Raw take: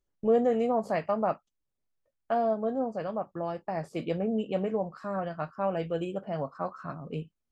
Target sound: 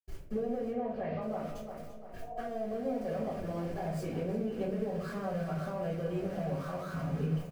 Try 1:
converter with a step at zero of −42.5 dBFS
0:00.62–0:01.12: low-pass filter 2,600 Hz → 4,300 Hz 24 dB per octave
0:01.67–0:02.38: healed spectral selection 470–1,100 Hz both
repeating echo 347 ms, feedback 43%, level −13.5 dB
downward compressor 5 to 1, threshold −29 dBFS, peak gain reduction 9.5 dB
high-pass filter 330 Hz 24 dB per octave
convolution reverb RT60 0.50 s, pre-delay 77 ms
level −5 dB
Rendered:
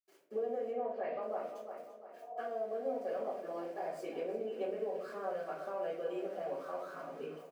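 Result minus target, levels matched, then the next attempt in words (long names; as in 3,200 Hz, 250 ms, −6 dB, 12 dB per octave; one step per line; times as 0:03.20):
250 Hz band −8.5 dB; converter with a step at zero: distortion −8 dB
converter with a step at zero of −33 dBFS
0:00.62–0:01.12: low-pass filter 2,600 Hz → 4,300 Hz 24 dB per octave
0:01.67–0:02.38: healed spectral selection 470–1,100 Hz both
repeating echo 347 ms, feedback 43%, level −13.5 dB
downward compressor 5 to 1, threshold −29 dBFS, peak gain reduction 10 dB
convolution reverb RT60 0.50 s, pre-delay 77 ms
level −5 dB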